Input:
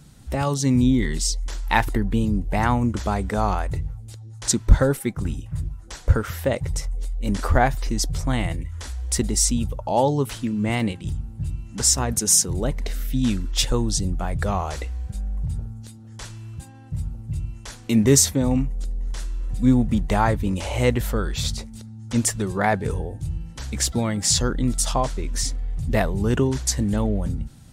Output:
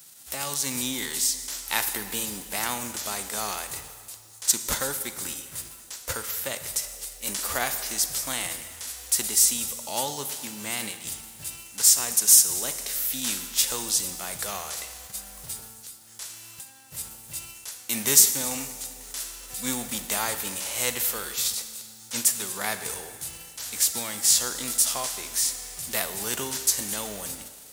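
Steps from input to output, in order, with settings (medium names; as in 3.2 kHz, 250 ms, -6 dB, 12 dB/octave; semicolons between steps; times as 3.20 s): formants flattened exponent 0.6; RIAA curve recording; Schroeder reverb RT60 1.9 s, DRR 10 dB; trim -10 dB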